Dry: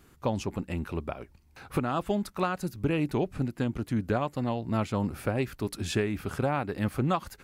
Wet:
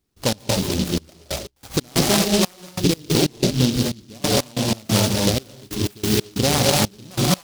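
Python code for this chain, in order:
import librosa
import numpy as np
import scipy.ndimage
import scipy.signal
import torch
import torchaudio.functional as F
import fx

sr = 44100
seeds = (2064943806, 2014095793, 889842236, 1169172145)

y = fx.rev_gated(x, sr, seeds[0], gate_ms=270, shape='rising', drr_db=-2.0)
y = fx.step_gate(y, sr, bpm=92, pattern='.x.xxx..x', floor_db=-24.0, edge_ms=4.5)
y = fx.noise_mod_delay(y, sr, seeds[1], noise_hz=4100.0, depth_ms=0.2)
y = y * 10.0 ** (7.5 / 20.0)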